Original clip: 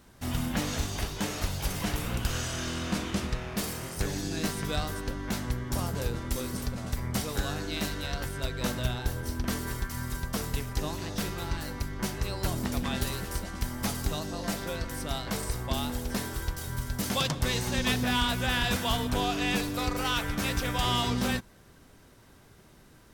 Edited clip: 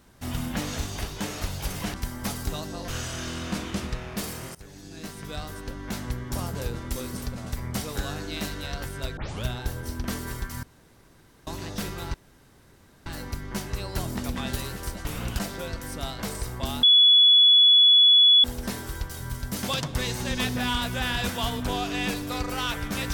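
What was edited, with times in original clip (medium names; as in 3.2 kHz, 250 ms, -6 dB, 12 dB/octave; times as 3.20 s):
1.94–2.28 s: swap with 13.53–14.47 s
3.95–5.49 s: fade in, from -19 dB
8.57 s: tape start 0.27 s
10.03–10.87 s: room tone
11.54 s: insert room tone 0.92 s
15.91 s: add tone 3.4 kHz -12.5 dBFS 1.61 s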